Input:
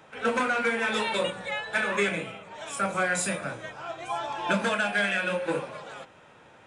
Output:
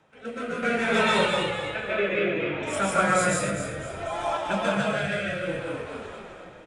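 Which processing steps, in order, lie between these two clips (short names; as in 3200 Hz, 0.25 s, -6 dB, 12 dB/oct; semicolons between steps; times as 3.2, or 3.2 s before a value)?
1.67–2.63 speaker cabinet 200–3800 Hz, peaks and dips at 350 Hz +6 dB, 530 Hz +5 dB, 2700 Hz +5 dB; tape echo 0.474 s, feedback 75%, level -22 dB, low-pass 2400 Hz; digital reverb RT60 0.46 s, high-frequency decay 0.55×, pre-delay 0.105 s, DRR -3.5 dB; random-step tremolo 1.6 Hz; low shelf 270 Hz +5 dB; frequency-shifting echo 0.252 s, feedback 38%, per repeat -52 Hz, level -6.5 dB; rotary speaker horn 0.6 Hz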